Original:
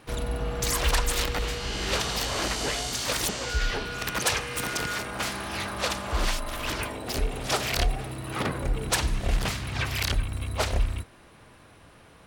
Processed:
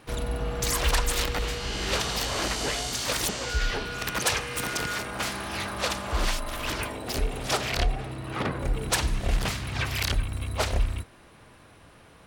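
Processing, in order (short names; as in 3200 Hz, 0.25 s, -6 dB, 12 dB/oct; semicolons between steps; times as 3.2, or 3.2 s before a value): 7.56–8.6 high shelf 9500 Hz -> 5900 Hz -11.5 dB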